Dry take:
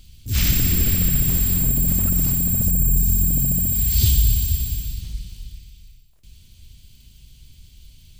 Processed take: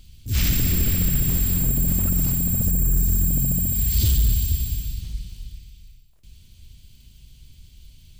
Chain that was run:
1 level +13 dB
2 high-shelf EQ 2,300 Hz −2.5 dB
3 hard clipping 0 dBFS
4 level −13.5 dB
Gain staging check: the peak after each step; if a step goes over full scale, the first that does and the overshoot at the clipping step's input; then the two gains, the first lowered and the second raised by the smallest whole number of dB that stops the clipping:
+8.0, +7.5, 0.0, −13.5 dBFS
step 1, 7.5 dB
step 1 +5 dB, step 4 −5.5 dB

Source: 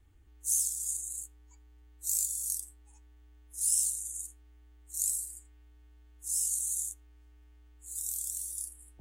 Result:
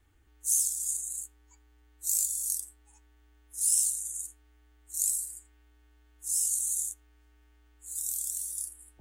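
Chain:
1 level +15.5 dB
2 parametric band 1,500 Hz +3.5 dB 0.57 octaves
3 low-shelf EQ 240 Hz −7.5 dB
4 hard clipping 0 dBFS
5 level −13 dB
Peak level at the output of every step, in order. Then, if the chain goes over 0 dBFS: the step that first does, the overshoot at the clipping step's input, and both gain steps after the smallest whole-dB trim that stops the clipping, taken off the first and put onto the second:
+4.5, +4.5, +4.5, 0.0, −13.0 dBFS
step 1, 4.5 dB
step 1 +10.5 dB, step 5 −8 dB

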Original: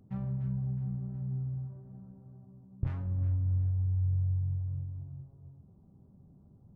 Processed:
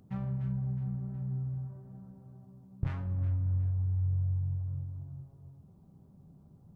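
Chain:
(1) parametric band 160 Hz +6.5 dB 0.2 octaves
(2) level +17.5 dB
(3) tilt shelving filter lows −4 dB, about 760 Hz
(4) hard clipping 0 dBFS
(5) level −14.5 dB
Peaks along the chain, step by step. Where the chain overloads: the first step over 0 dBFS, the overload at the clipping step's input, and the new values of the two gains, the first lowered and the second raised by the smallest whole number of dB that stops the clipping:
−18.5, −1.0, −4.5, −4.5, −19.0 dBFS
no step passes full scale

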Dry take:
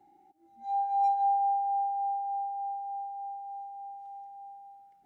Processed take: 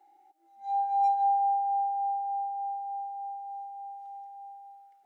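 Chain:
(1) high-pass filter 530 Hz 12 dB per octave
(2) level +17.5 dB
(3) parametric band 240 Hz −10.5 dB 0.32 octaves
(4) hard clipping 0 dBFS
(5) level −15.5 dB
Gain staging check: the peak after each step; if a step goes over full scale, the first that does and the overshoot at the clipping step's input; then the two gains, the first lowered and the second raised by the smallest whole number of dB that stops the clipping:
−21.0, −3.5, −3.5, −3.5, −19.0 dBFS
no step passes full scale

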